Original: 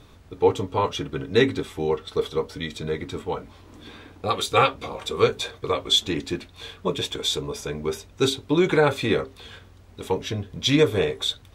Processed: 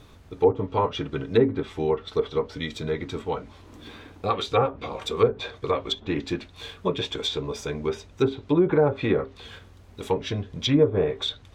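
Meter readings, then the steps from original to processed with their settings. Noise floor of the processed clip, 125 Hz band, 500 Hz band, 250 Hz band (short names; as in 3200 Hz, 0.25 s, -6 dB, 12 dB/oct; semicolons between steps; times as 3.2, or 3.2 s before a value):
-50 dBFS, 0.0 dB, -0.5 dB, 0.0 dB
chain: careless resampling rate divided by 2×, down none, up hold; treble ducked by the level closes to 770 Hz, closed at -15.5 dBFS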